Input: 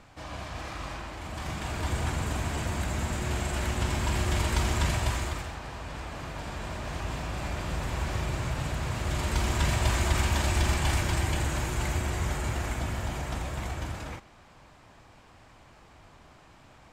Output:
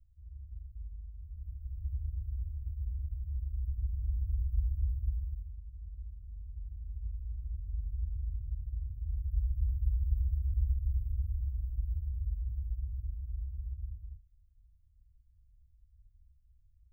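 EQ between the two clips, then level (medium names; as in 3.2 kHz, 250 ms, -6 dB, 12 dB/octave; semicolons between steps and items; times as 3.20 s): inverse Chebyshev band-stop 390–6700 Hz, stop band 80 dB; 0.0 dB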